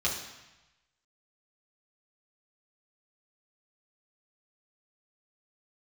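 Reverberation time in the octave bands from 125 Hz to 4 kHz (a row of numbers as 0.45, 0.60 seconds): 1.2, 0.95, 0.95, 1.1, 1.1, 1.0 seconds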